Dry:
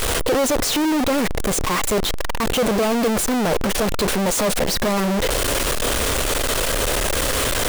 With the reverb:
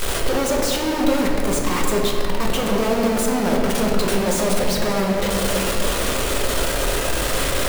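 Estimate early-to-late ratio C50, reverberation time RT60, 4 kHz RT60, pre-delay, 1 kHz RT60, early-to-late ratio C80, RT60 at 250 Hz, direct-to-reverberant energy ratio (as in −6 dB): 1.5 dB, 2.7 s, 1.5 s, 5 ms, 2.5 s, 2.5 dB, 3.6 s, −1.0 dB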